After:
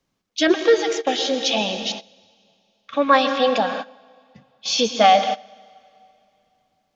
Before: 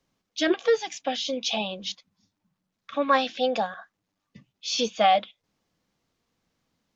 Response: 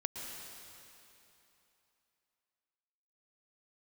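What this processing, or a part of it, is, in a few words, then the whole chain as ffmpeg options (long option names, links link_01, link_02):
keyed gated reverb: -filter_complex "[0:a]asplit=3[link_01][link_02][link_03];[1:a]atrim=start_sample=2205[link_04];[link_02][link_04]afir=irnorm=-1:irlink=0[link_05];[link_03]apad=whole_len=306641[link_06];[link_05][link_06]sidechaingate=range=-19dB:threshold=-40dB:ratio=16:detection=peak,volume=1.5dB[link_07];[link_01][link_07]amix=inputs=2:normalize=0"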